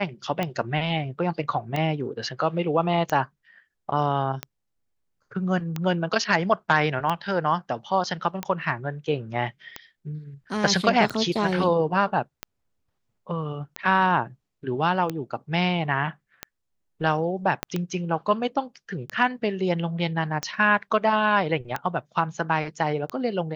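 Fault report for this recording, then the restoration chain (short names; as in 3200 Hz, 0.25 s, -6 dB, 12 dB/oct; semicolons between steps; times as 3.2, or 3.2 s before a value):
tick 45 rpm -13 dBFS
17.63 pop -10 dBFS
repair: de-click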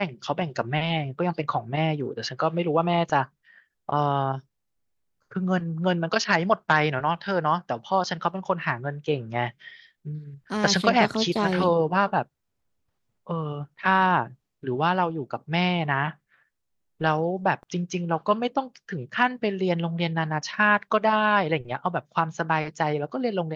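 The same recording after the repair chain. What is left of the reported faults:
17.63 pop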